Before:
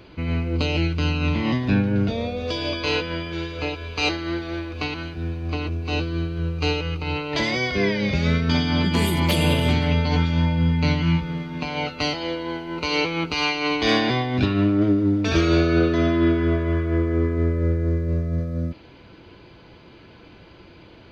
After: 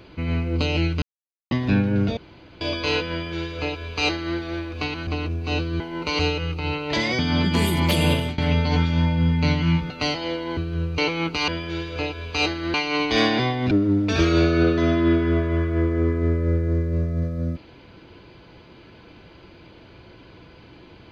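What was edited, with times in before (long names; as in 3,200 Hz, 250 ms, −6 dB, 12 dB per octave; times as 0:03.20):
0:01.02–0:01.51: silence
0:02.17–0:02.61: fill with room tone
0:03.11–0:04.37: duplicate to 0:13.45
0:05.07–0:05.48: remove
0:06.21–0:06.62: swap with 0:12.56–0:12.95
0:07.62–0:08.59: remove
0:09.52–0:09.78: fade out, to −22 dB
0:11.30–0:11.89: remove
0:14.42–0:14.87: remove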